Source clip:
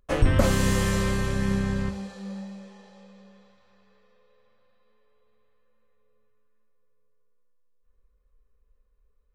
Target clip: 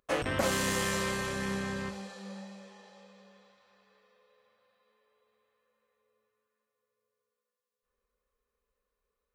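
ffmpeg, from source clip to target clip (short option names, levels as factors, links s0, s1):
-af "asoftclip=type=tanh:threshold=0.168,highpass=f=490:p=1"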